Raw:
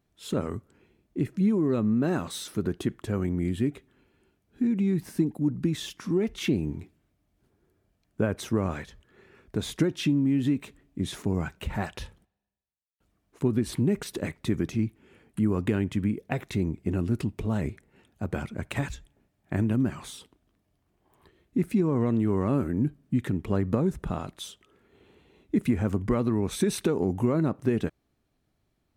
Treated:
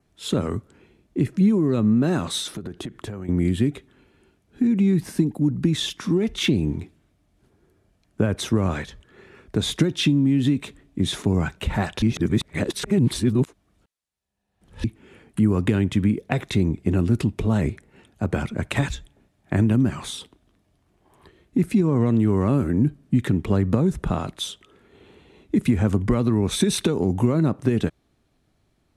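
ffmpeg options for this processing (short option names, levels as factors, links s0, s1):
-filter_complex "[0:a]asettb=1/sr,asplit=3[s0][s1][s2];[s0]atrim=end=2.404[s3];[s1]atrim=start=2.4:end=3.29,asetpts=PTS-STARTPTS,afade=t=in:d=0.004:c=qsin,afade=t=out:st=0.886:d=0.004:c=qsin,acompressor=threshold=0.0178:ratio=16:attack=3.2:release=140:knee=1:detection=peak[s4];[s2]atrim=start=3.286[s5];[s3][s4]acrossfade=d=0.004:c1=hsin:c2=qsin[s6];[s6][s5]acrossfade=d=0.004:c1=qsin:c2=hsin,asplit=3[s7][s8][s9];[s7]atrim=end=12.022[s10];[s8]atrim=start=12.018:end=14.842,asetpts=PTS-STARTPTS,areverse[s11];[s9]atrim=start=14.838[s12];[s10][s11]acrossfade=d=0.004:c1=hsin:c2=hsin[s13];[s13][s12]acrossfade=d=0.004:c1=hsin:c2=hsin,lowpass=f=12000:w=0.5412,lowpass=f=12000:w=1.3066,adynamicequalizer=threshold=0.00158:dfrequency=3600:dqfactor=6.1:tfrequency=3600:tqfactor=6.1:attack=5:release=100:ratio=0.375:range=3:mode=boostabove:tftype=bell,acrossover=split=200|3000[s14][s15][s16];[s15]acompressor=threshold=0.0398:ratio=6[s17];[s14][s17][s16]amix=inputs=3:normalize=0,volume=2.37"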